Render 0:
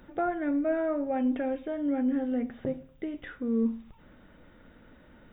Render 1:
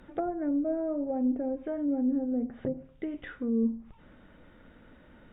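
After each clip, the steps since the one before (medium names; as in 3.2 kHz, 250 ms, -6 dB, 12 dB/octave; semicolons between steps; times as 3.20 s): low-pass that closes with the level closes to 600 Hz, closed at -26.5 dBFS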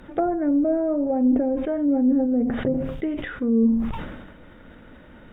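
decay stretcher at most 44 dB/s; trim +8 dB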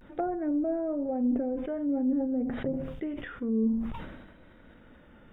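vibrato 0.52 Hz 52 cents; trim -8 dB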